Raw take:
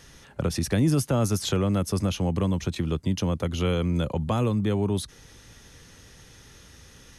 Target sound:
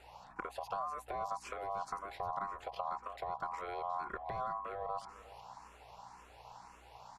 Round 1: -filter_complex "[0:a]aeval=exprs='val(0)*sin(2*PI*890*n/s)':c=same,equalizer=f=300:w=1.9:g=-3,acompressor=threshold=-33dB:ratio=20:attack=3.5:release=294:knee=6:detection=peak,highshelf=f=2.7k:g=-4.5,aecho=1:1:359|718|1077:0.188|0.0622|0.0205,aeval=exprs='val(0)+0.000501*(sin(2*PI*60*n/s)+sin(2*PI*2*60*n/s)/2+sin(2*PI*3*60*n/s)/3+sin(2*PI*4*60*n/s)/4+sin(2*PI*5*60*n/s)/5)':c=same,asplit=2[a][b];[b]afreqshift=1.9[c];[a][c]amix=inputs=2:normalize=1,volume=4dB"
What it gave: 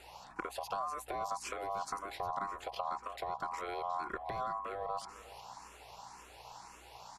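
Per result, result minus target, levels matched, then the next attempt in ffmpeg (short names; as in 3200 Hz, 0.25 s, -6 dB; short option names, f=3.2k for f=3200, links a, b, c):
4000 Hz band +5.5 dB; 250 Hz band +3.0 dB
-filter_complex "[0:a]aeval=exprs='val(0)*sin(2*PI*890*n/s)':c=same,equalizer=f=300:w=1.9:g=-3,acompressor=threshold=-33dB:ratio=20:attack=3.5:release=294:knee=6:detection=peak,highshelf=f=2.7k:g=-15.5,aecho=1:1:359|718|1077:0.188|0.0622|0.0205,aeval=exprs='val(0)+0.000501*(sin(2*PI*60*n/s)+sin(2*PI*2*60*n/s)/2+sin(2*PI*3*60*n/s)/3+sin(2*PI*4*60*n/s)/4+sin(2*PI*5*60*n/s)/5)':c=same,asplit=2[a][b];[b]afreqshift=1.9[c];[a][c]amix=inputs=2:normalize=1,volume=4dB"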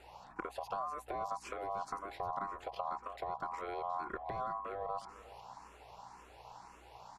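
250 Hz band +4.0 dB
-filter_complex "[0:a]aeval=exprs='val(0)*sin(2*PI*890*n/s)':c=same,equalizer=f=300:w=1.9:g=-11.5,acompressor=threshold=-33dB:ratio=20:attack=3.5:release=294:knee=6:detection=peak,highshelf=f=2.7k:g=-15.5,aecho=1:1:359|718|1077:0.188|0.0622|0.0205,aeval=exprs='val(0)+0.000501*(sin(2*PI*60*n/s)+sin(2*PI*2*60*n/s)/2+sin(2*PI*3*60*n/s)/3+sin(2*PI*4*60*n/s)/4+sin(2*PI*5*60*n/s)/5)':c=same,asplit=2[a][b];[b]afreqshift=1.9[c];[a][c]amix=inputs=2:normalize=1,volume=4dB"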